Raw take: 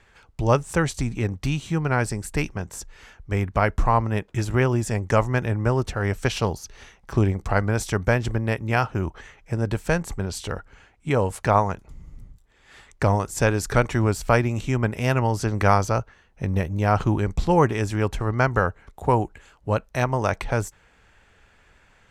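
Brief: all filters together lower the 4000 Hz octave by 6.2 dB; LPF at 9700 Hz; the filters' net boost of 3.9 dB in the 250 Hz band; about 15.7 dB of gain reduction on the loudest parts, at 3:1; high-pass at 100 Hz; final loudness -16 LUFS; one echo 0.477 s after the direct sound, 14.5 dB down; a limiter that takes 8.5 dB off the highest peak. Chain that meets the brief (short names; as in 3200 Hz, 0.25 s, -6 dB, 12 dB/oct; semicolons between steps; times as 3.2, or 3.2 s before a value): HPF 100 Hz; LPF 9700 Hz; bell 250 Hz +5.5 dB; bell 4000 Hz -9 dB; compressor 3:1, threshold -35 dBFS; limiter -25.5 dBFS; echo 0.477 s -14.5 dB; gain +22.5 dB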